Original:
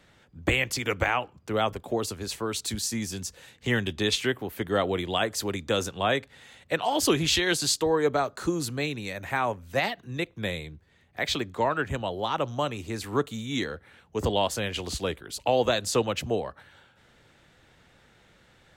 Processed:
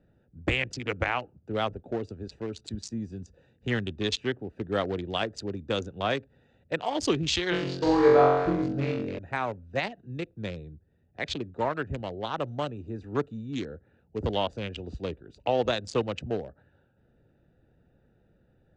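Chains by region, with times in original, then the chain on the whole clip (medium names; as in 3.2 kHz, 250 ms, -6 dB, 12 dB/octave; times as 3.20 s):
7.50–9.19 s: low-pass 2.5 kHz + flutter echo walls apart 3.8 m, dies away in 1.3 s
whole clip: local Wiener filter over 41 samples; low-pass 7.1 kHz 24 dB/octave; trim -1.5 dB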